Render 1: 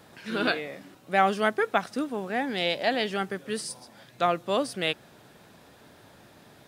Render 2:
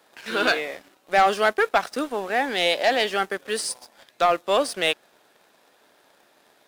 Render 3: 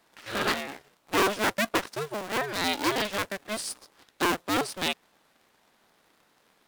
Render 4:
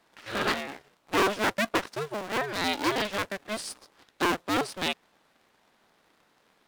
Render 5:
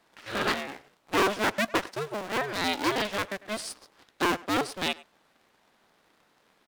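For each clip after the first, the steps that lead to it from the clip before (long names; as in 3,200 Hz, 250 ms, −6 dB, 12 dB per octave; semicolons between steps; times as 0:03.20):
high-pass filter 410 Hz 12 dB per octave; leveller curve on the samples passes 2
sub-harmonics by changed cycles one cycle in 2, inverted; level −6 dB
high-shelf EQ 7,300 Hz −7 dB
far-end echo of a speakerphone 100 ms, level −18 dB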